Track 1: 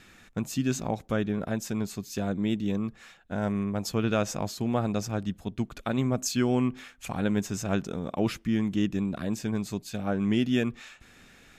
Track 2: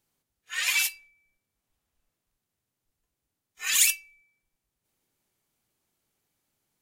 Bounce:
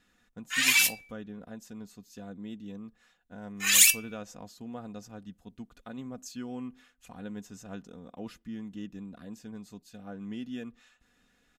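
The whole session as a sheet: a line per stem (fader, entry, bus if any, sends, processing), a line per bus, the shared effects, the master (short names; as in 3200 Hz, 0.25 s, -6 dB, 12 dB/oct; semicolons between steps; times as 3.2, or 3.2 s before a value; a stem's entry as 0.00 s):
-15.0 dB, 0.00 s, no send, notch 2300 Hz, Q 8.8; comb 4.1 ms, depth 43%
+2.5 dB, 0.00 s, no send, gate -53 dBFS, range -17 dB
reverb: off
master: dry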